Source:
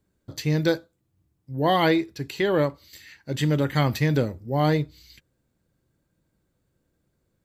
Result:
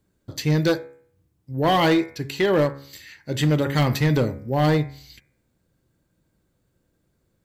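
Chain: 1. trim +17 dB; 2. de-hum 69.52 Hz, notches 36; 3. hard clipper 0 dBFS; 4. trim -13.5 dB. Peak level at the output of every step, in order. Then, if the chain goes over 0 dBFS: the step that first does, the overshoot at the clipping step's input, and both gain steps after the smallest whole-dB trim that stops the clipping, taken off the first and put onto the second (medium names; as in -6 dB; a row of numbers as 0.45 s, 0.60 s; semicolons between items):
+8.5 dBFS, +8.0 dBFS, 0.0 dBFS, -13.5 dBFS; step 1, 8.0 dB; step 1 +9 dB, step 4 -5.5 dB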